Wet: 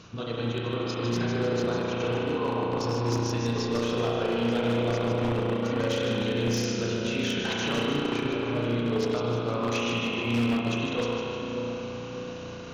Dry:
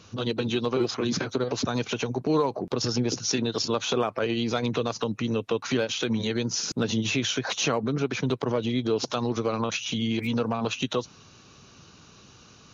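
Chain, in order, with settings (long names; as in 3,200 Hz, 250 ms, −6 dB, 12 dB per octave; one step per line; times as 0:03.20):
high-shelf EQ 6,100 Hz −8 dB
reversed playback
downward compressor 12 to 1, threshold −34 dBFS, peak gain reduction 15 dB
reversed playback
spring reverb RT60 3.8 s, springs 34 ms, chirp 75 ms, DRR −5.5 dB
transient designer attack +1 dB, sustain −8 dB
on a send: echo with a time of its own for lows and highs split 1,000 Hz, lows 589 ms, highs 152 ms, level −6 dB
on the sum: wave folding −23 dBFS
level +4 dB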